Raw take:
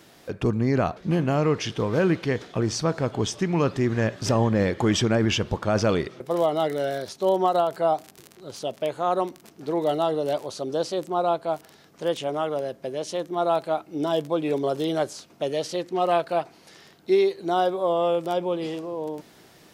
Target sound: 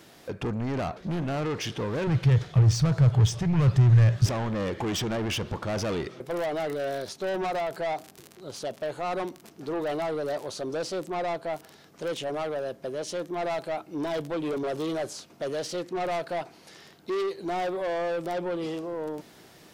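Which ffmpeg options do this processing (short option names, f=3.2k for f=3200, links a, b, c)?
-filter_complex "[0:a]asoftclip=type=tanh:threshold=-26dB,asettb=1/sr,asplit=3[a][b][c];[a]atrim=end=2.074[d];[b]atrim=start=2.07:end=4.26,asetpts=PTS-STARTPTS,afade=t=in:d=0.004:c=qsin,afade=t=out:st=2.186:d=0.004:c=qsin,lowshelf=f=180:t=q:w=3:g=10.5[e];[c]atrim=start=4.256[f];[d][e]acrossfade=d=0.004:c1=hsin:c2=qsin[g];[g][f]acrossfade=d=0.004:c1=qsin:c2=hsin"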